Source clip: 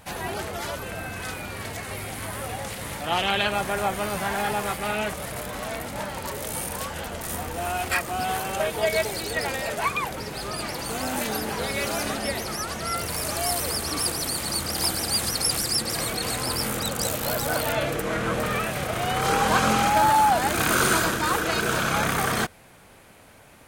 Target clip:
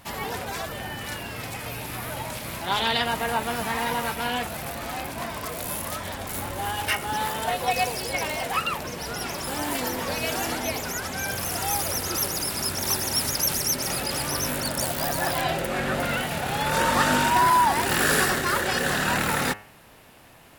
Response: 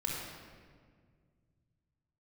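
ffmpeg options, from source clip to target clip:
-af "bandreject=f=90.54:t=h:w=4,bandreject=f=181.08:t=h:w=4,bandreject=f=271.62:t=h:w=4,bandreject=f=362.16:t=h:w=4,bandreject=f=452.7:t=h:w=4,bandreject=f=543.24:t=h:w=4,bandreject=f=633.78:t=h:w=4,bandreject=f=724.32:t=h:w=4,bandreject=f=814.86:t=h:w=4,bandreject=f=905.4:t=h:w=4,bandreject=f=995.94:t=h:w=4,bandreject=f=1086.48:t=h:w=4,bandreject=f=1177.02:t=h:w=4,bandreject=f=1267.56:t=h:w=4,bandreject=f=1358.1:t=h:w=4,bandreject=f=1448.64:t=h:w=4,bandreject=f=1539.18:t=h:w=4,bandreject=f=1629.72:t=h:w=4,bandreject=f=1720.26:t=h:w=4,bandreject=f=1810.8:t=h:w=4,bandreject=f=1901.34:t=h:w=4,bandreject=f=1991.88:t=h:w=4,bandreject=f=2082.42:t=h:w=4,bandreject=f=2172.96:t=h:w=4,bandreject=f=2263.5:t=h:w=4,bandreject=f=2354.04:t=h:w=4,bandreject=f=2444.58:t=h:w=4,bandreject=f=2535.12:t=h:w=4,bandreject=f=2625.66:t=h:w=4,bandreject=f=2716.2:t=h:w=4,asetrate=50715,aresample=44100"

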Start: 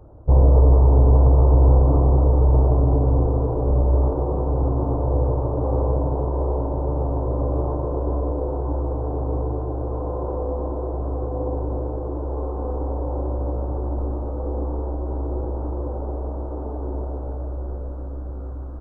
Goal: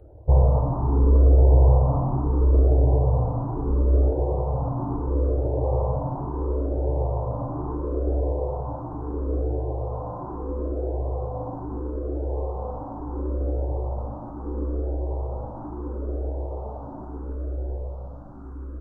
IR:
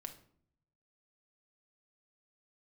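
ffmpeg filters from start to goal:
-filter_complex "[0:a]asplit=2[s0][s1];[s1]afreqshift=0.74[s2];[s0][s2]amix=inputs=2:normalize=1"

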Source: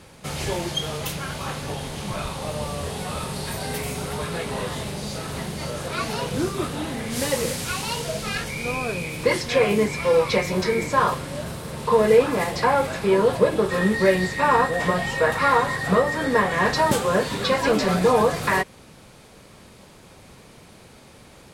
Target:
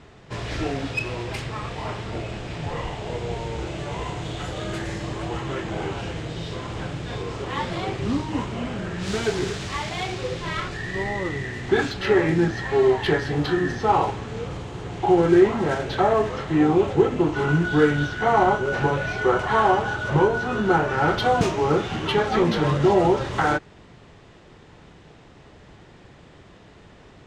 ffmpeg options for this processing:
-af "adynamicsmooth=sensitivity=1.5:basefreq=5700,asetrate=34839,aresample=44100"

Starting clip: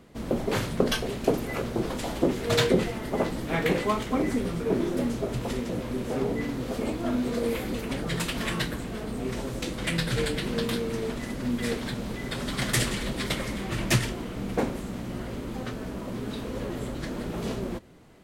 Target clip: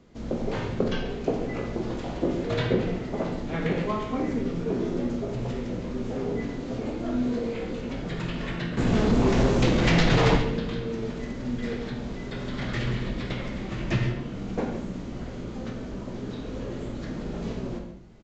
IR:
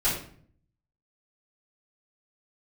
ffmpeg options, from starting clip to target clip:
-filter_complex "[0:a]acrossover=split=700|3800[s0][s1][s2];[s1]flanger=delay=19.5:depth=5.3:speed=0.14[s3];[s2]acompressor=threshold=0.00282:ratio=6[s4];[s0][s3][s4]amix=inputs=3:normalize=0,asettb=1/sr,asplit=3[s5][s6][s7];[s5]atrim=end=8.774[s8];[s6]atrim=start=8.77:end=10.37,asetpts=PTS-STARTPTS,afade=t=in:d=0.004:c=qsin,afade=t=out:st=1.596:d=0.004:c=qsin,aeval=exprs='0.158*sin(PI/2*3.55*val(0)/0.158)':c=same[s9];[s7]atrim=start=10.366[s10];[s8][s9]acrossfade=d=0.004:c1=hsin:c2=qsin[s11];[s11][s10]acrossfade=d=0.004:c1=qsin:c2=hsin,aecho=1:1:137:0.2,asplit=2[s12][s13];[1:a]atrim=start_sample=2205,adelay=44[s14];[s13][s14]afir=irnorm=-1:irlink=0,volume=0.158[s15];[s12][s15]amix=inputs=2:normalize=0,aresample=16000,aresample=44100,volume=0.75"

